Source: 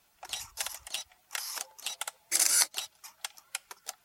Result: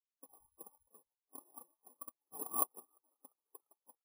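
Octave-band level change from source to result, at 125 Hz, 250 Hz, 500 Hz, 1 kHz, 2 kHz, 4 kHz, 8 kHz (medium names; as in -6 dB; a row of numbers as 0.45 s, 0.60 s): no reading, +2.0 dB, -2.5 dB, -4.0 dB, under -40 dB, under -40 dB, -17.5 dB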